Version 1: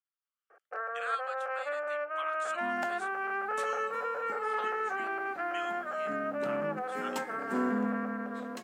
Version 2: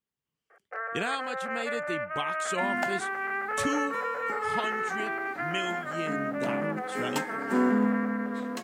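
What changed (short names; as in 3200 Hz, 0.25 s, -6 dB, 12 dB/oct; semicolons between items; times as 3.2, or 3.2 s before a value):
speech: remove ladder high-pass 1200 Hz, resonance 75%; first sound: add bell 2000 Hz +12.5 dB 0.33 oct; second sound +6.5 dB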